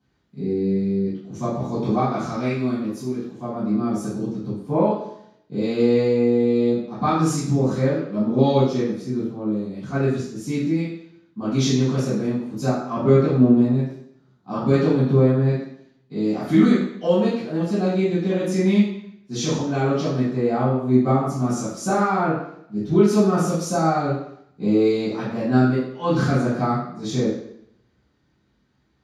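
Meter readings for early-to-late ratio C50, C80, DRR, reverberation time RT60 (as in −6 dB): 1.0 dB, 5.0 dB, −11.5 dB, 0.70 s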